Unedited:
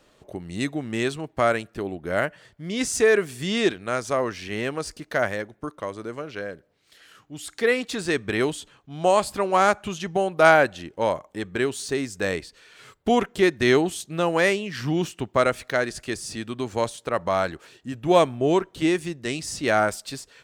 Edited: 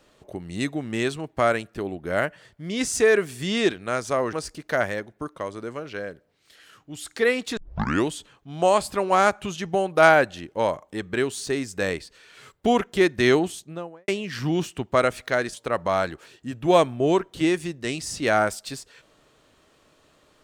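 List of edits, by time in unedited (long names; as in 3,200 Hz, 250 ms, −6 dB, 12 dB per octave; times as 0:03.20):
0:04.33–0:04.75: remove
0:07.99: tape start 0.50 s
0:13.78–0:14.50: fade out and dull
0:15.96–0:16.95: remove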